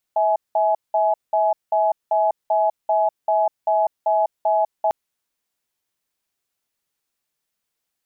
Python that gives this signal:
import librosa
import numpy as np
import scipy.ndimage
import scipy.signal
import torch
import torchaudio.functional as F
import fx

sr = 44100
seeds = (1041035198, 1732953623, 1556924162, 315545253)

y = fx.cadence(sr, length_s=4.75, low_hz=649.0, high_hz=842.0, on_s=0.2, off_s=0.19, level_db=-18.0)